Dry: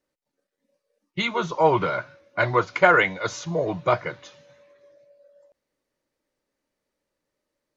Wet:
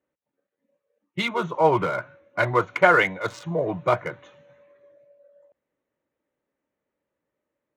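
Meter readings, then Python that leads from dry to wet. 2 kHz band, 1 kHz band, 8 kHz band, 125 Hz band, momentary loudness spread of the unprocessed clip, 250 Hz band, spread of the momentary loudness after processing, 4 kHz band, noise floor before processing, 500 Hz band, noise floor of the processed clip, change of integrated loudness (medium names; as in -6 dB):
-0.5 dB, -0.5 dB, no reading, -0.5 dB, 14 LU, 0.0 dB, 14 LU, -1.5 dB, -83 dBFS, 0.0 dB, -84 dBFS, -0.5 dB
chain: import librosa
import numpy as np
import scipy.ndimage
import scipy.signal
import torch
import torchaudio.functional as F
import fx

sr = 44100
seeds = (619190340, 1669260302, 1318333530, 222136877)

y = fx.wiener(x, sr, points=9)
y = scipy.signal.sosfilt(scipy.signal.butter(2, 65.0, 'highpass', fs=sr, output='sos'), y)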